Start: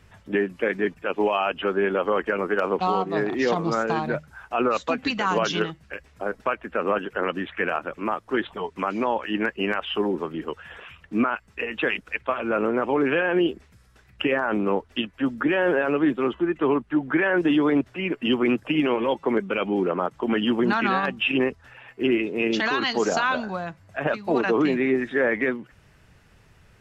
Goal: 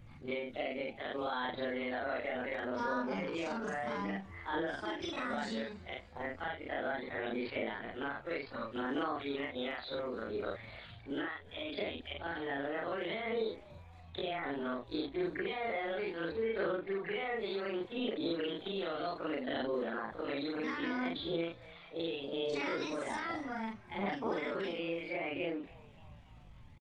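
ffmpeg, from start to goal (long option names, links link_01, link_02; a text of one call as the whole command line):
ffmpeg -i in.wav -filter_complex "[0:a]afftfilt=real='re':imag='-im':win_size=4096:overlap=0.75,acrossover=split=390|930[link_01][link_02][link_03];[link_01]acompressor=threshold=-37dB:ratio=4[link_04];[link_02]acompressor=threshold=-44dB:ratio=4[link_05];[link_03]acompressor=threshold=-37dB:ratio=4[link_06];[link_04][link_05][link_06]amix=inputs=3:normalize=0,aphaser=in_gain=1:out_gain=1:delay=2:decay=0.27:speed=0.66:type=sinusoidal,aemphasis=mode=reproduction:type=bsi,asetrate=57191,aresample=44100,atempo=0.771105,lowshelf=frequency=210:gain=-6.5,asplit=2[link_07][link_08];[link_08]asplit=4[link_09][link_10][link_11][link_12];[link_09]adelay=288,afreqshift=140,volume=-23.5dB[link_13];[link_10]adelay=576,afreqshift=280,volume=-28.1dB[link_14];[link_11]adelay=864,afreqshift=420,volume=-32.7dB[link_15];[link_12]adelay=1152,afreqshift=560,volume=-37.2dB[link_16];[link_13][link_14][link_15][link_16]amix=inputs=4:normalize=0[link_17];[link_07][link_17]amix=inputs=2:normalize=0,volume=-3.5dB" out.wav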